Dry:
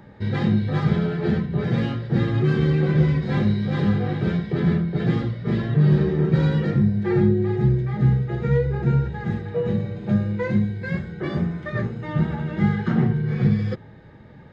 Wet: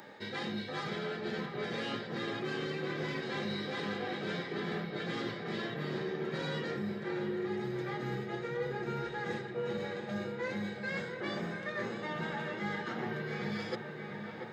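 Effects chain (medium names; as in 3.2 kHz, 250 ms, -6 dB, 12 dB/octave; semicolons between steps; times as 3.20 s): high-pass 380 Hz 12 dB/octave; treble shelf 3.2 kHz +11.5 dB; reverse; compression 6:1, threshold -35 dBFS, peak gain reduction 14 dB; reverse; feedback echo behind a low-pass 689 ms, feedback 69%, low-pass 2.6 kHz, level -7.5 dB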